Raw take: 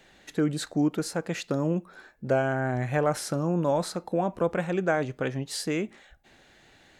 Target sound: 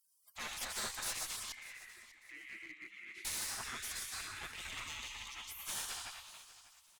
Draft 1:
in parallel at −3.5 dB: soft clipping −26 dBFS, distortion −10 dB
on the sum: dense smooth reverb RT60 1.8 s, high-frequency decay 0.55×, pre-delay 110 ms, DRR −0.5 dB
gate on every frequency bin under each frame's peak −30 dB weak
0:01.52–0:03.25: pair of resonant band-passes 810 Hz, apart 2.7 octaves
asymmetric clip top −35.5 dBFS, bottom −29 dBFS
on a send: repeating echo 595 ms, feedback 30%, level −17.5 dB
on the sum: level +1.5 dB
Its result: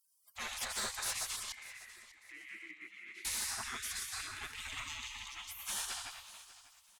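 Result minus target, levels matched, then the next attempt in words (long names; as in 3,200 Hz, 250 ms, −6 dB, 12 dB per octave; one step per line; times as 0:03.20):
asymmetric clip: distortion −8 dB
in parallel at −3.5 dB: soft clipping −26 dBFS, distortion −10 dB
on the sum: dense smooth reverb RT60 1.8 s, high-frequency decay 0.55×, pre-delay 110 ms, DRR −0.5 dB
gate on every frequency bin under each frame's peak −30 dB weak
0:01.52–0:03.25: pair of resonant band-passes 810 Hz, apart 2.7 octaves
asymmetric clip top −46 dBFS, bottom −29 dBFS
on a send: repeating echo 595 ms, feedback 30%, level −17.5 dB
on the sum: level +1.5 dB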